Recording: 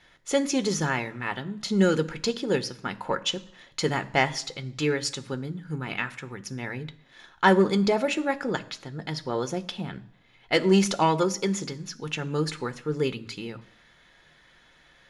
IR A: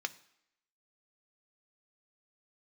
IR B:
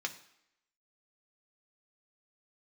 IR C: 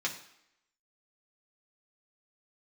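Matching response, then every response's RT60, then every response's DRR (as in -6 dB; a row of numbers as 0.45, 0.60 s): A; 0.75, 0.75, 0.75 s; 9.5, 3.5, -2.5 dB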